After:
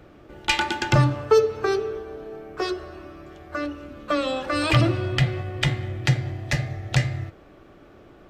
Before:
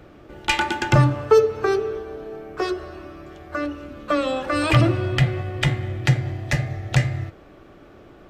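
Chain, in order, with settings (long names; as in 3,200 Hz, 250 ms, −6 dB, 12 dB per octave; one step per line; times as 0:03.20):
dynamic equaliser 4,400 Hz, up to +5 dB, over −42 dBFS, Q 1.1
level −2.5 dB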